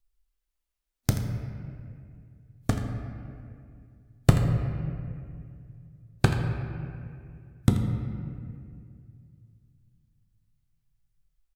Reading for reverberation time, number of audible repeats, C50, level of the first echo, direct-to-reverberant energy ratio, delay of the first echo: 2.3 s, 1, 4.0 dB, -12.0 dB, 3.0 dB, 82 ms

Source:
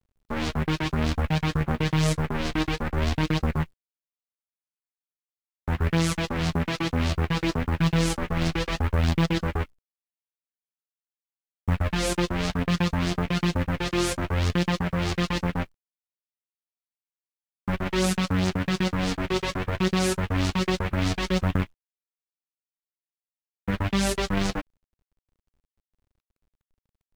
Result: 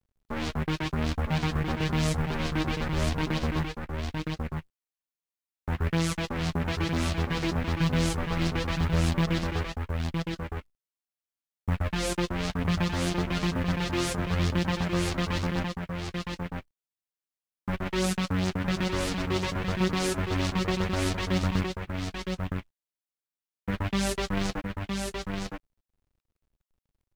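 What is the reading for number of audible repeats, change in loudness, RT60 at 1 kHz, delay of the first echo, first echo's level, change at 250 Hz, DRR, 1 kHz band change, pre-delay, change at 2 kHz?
1, -3.5 dB, no reverb, 964 ms, -4.5 dB, -2.5 dB, no reverb, -2.0 dB, no reverb, -2.0 dB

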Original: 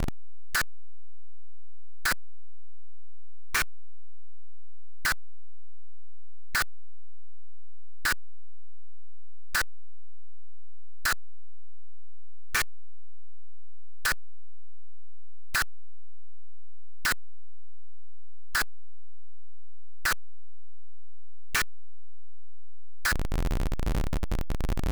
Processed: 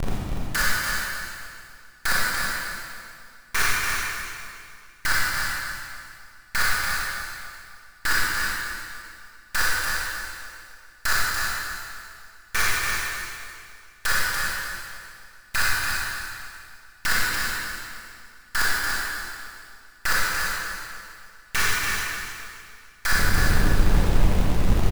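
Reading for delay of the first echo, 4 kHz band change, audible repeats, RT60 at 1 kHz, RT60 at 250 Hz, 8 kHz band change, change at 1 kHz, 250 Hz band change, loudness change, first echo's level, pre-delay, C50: 289 ms, +8.5 dB, 1, 2.3 s, 2.4 s, +8.5 dB, +8.5 dB, +8.0 dB, +5.5 dB, -6.0 dB, 24 ms, -5.0 dB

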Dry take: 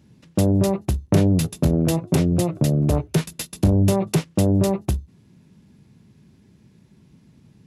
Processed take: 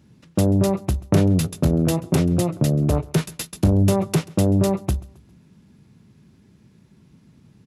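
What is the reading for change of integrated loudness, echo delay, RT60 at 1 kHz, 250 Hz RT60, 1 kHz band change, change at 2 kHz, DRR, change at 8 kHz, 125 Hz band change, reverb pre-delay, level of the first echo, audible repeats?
0.0 dB, 134 ms, no reverb, no reverb, +0.5 dB, +0.5 dB, no reverb, 0.0 dB, 0.0 dB, no reverb, -23.0 dB, 2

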